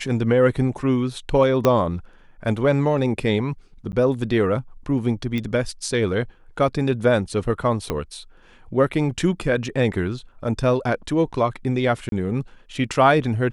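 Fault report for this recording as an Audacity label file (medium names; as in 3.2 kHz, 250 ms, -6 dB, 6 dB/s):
1.650000	1.650000	pop -5 dBFS
3.920000	3.930000	dropout 9.9 ms
5.380000	5.380000	pop -15 dBFS
7.900000	7.900000	pop -10 dBFS
12.090000	12.120000	dropout 32 ms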